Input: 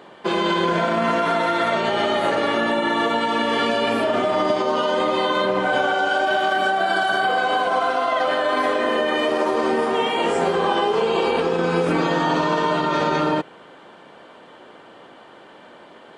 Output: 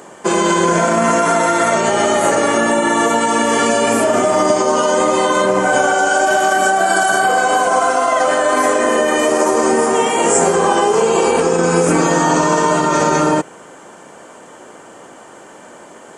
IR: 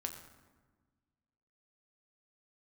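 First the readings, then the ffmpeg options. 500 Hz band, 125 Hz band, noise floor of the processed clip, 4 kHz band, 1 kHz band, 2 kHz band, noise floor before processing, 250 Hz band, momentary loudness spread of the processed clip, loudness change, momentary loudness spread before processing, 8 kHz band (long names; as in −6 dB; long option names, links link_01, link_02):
+6.5 dB, +6.5 dB, −39 dBFS, +1.5 dB, +6.0 dB, +5.0 dB, −46 dBFS, +6.5 dB, 1 LU, +6.5 dB, 1 LU, +23.0 dB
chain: -af "highshelf=frequency=5200:width_type=q:width=3:gain=11.5,volume=6.5dB"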